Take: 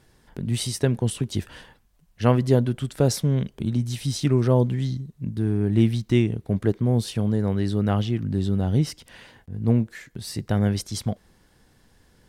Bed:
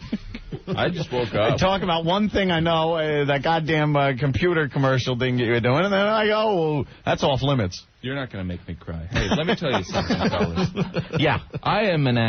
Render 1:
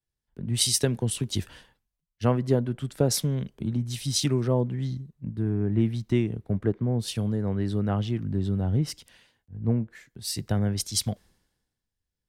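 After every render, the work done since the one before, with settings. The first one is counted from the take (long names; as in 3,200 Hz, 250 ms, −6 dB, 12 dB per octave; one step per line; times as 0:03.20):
downward compressor 3 to 1, threshold −23 dBFS, peak gain reduction 9 dB
multiband upward and downward expander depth 100%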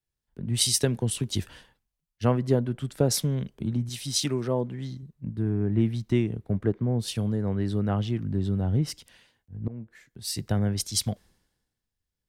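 0:03.89–0:05.03: low-shelf EQ 150 Hz −10.5 dB
0:09.68–0:10.47: fade in equal-power, from −23 dB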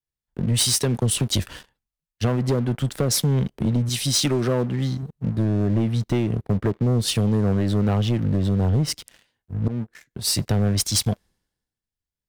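downward compressor, threshold −25 dBFS, peak gain reduction 9 dB
leveller curve on the samples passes 3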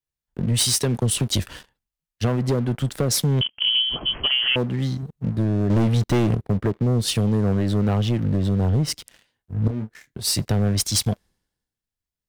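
0:03.41–0:04.56: voice inversion scrambler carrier 3,200 Hz
0:05.70–0:06.35: leveller curve on the samples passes 2
0:09.54–0:10.20: double-tracking delay 28 ms −7 dB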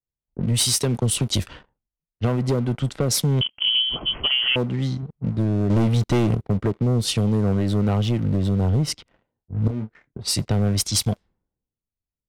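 notch filter 1,700 Hz, Q 11
low-pass that shuts in the quiet parts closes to 570 Hz, open at −18.5 dBFS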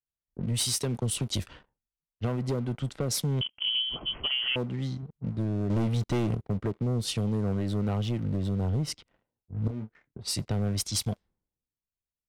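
level −8 dB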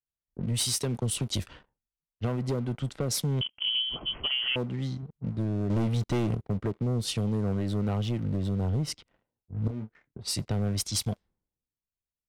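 no processing that can be heard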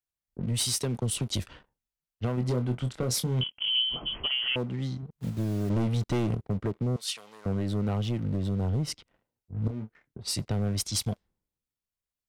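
0:02.35–0:04.23: double-tracking delay 24 ms −6.5 dB
0:05.16–0:05.70: one scale factor per block 5 bits
0:06.96–0:07.46: high-pass filter 1,200 Hz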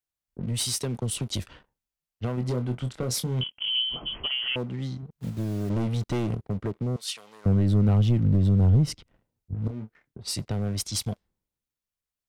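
0:07.44–0:09.55: low-shelf EQ 250 Hz +11.5 dB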